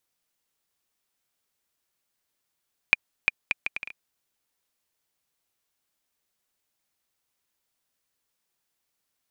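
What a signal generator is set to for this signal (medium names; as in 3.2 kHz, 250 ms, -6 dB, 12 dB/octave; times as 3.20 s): bouncing ball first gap 0.35 s, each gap 0.66, 2.41 kHz, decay 22 ms -2.5 dBFS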